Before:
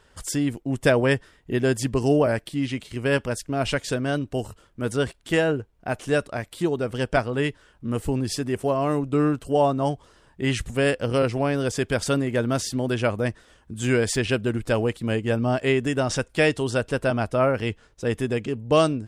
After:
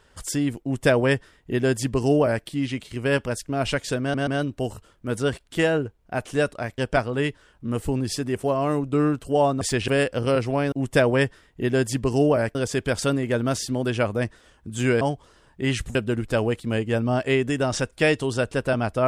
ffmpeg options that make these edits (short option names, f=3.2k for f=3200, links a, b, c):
-filter_complex "[0:a]asplit=10[a][b][c][d][e][f][g][h][i][j];[a]atrim=end=4.142[k];[b]atrim=start=4.008:end=4.142[l];[c]atrim=start=4.008:end=6.522[m];[d]atrim=start=6.978:end=9.812[n];[e]atrim=start=14.048:end=14.322[o];[f]atrim=start=10.748:end=11.592[p];[g]atrim=start=0.618:end=2.452[q];[h]atrim=start=11.588:end=14.052[r];[i]atrim=start=9.808:end=10.752[s];[j]atrim=start=14.318[t];[k][l]acrossfade=d=0.004:c1=hsin:c2=hsin[u];[u][m]acrossfade=d=0.004:c1=hsin:c2=hsin[v];[v][n]acrossfade=d=0.004:c1=hsin:c2=hsin[w];[w][o]acrossfade=d=0.004:c1=hsin:c2=hsin[x];[x][p]acrossfade=d=0.004:c1=hsin:c2=hsin[y];[y][q]acrossfade=d=0.004:c1=hsin:c2=hsin[z];[z][r]acrossfade=d=0.004:c1=hsin:c2=hsin[aa];[aa][s]acrossfade=d=0.004:c1=hsin:c2=hsin[ab];[ab][t]acrossfade=d=0.004:c1=hsin:c2=hsin"